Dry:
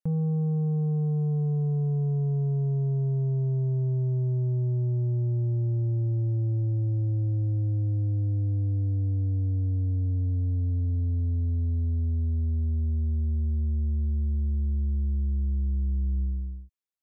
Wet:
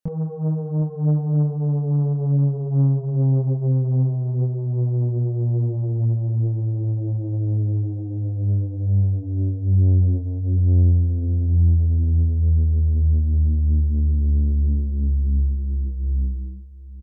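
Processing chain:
multi-voice chorus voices 4, 1.1 Hz, delay 25 ms, depth 3.1 ms
single-tap delay 741 ms −16.5 dB
highs frequency-modulated by the lows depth 0.58 ms
level +8.5 dB

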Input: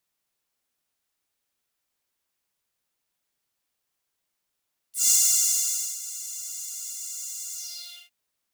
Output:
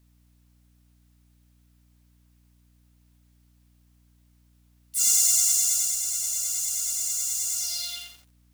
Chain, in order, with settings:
downward compressor 2 to 1, threshold −33 dBFS, peak gain reduction 9.5 dB
mains hum 60 Hz, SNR 30 dB
feedback echo at a low word length 86 ms, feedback 55%, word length 9 bits, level −6 dB
level +7.5 dB

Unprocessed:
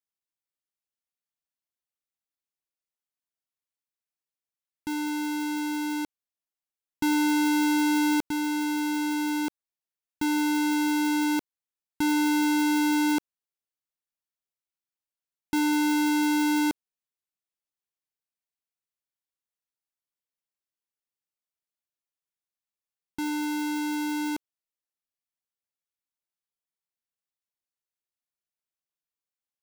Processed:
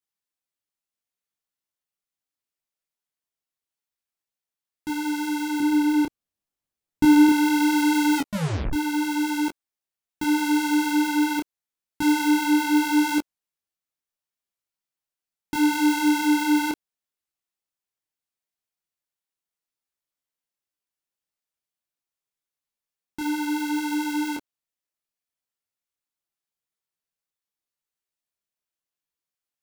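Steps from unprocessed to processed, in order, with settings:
0:05.60–0:07.29: low-shelf EQ 390 Hz +11.5 dB
0:08.16: tape stop 0.57 s
micro pitch shift up and down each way 26 cents
level +6 dB

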